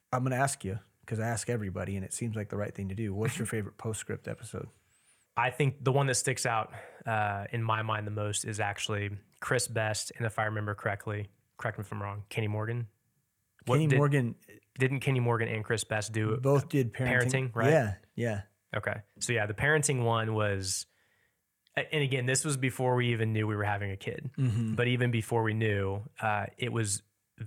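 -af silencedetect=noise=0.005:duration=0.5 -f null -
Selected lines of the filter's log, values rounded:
silence_start: 4.68
silence_end: 5.37 | silence_duration: 0.68
silence_start: 12.86
silence_end: 13.59 | silence_duration: 0.73
silence_start: 20.83
silence_end: 21.67 | silence_duration: 0.84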